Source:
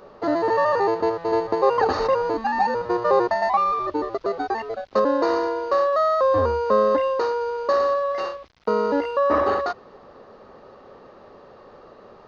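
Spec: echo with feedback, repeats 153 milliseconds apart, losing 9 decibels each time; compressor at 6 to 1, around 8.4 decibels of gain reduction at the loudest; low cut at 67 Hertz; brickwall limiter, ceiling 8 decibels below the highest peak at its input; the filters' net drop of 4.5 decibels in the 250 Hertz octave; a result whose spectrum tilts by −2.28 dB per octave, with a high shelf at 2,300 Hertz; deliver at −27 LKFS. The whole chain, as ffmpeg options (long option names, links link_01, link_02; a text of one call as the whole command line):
ffmpeg -i in.wav -af "highpass=67,equalizer=frequency=250:width_type=o:gain=-6.5,highshelf=frequency=2300:gain=4,acompressor=threshold=-24dB:ratio=6,alimiter=limit=-20.5dB:level=0:latency=1,aecho=1:1:153|306|459|612:0.355|0.124|0.0435|0.0152,volume=2dB" out.wav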